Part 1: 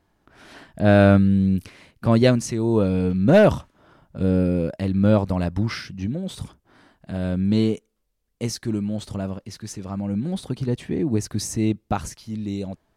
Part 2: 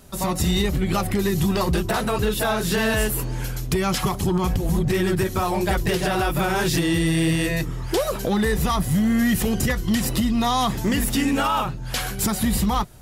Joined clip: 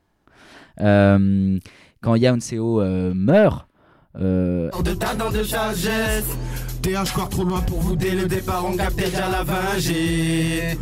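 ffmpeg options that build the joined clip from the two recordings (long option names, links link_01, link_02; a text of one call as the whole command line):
ffmpeg -i cue0.wav -i cue1.wav -filter_complex "[0:a]asettb=1/sr,asplit=3[link_01][link_02][link_03];[link_01]atrim=end=3.304[link_04];[link_02]atrim=start=3.3:end=4.79,asetpts=PTS-STARTPTS,afade=type=in:duration=0.004:curve=qsin,afade=type=out:start_time=1.486:duration=0.004:curve=qsin,equalizer=frequency=6600:width=1.3:gain=-11.5[link_05];[link_03]atrim=start=4.786[link_06];[link_04][link_05]acrossfade=duration=0.004:curve1=hsin:curve2=qsin[link_07];[link_07][link_06]acrossfade=duration=0.004:curve1=qsin:curve2=hsin,apad=whole_dur=10.81,atrim=end=10.81,atrim=end=4.79,asetpts=PTS-STARTPTS[link_08];[1:a]atrim=start=1.59:end=7.69,asetpts=PTS-STARTPTS[link_09];[link_08][link_09]acrossfade=duration=0.08:curve1=tri:curve2=tri" out.wav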